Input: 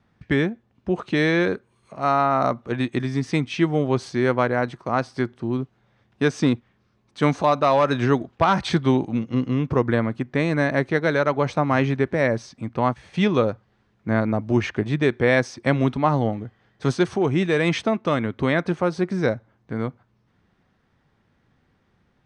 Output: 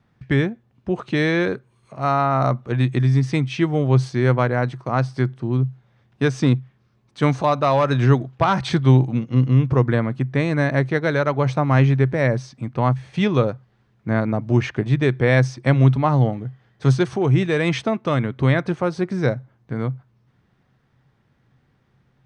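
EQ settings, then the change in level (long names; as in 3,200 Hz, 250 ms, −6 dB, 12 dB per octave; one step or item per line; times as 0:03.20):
parametric band 130 Hz +13.5 dB 0.21 octaves
0.0 dB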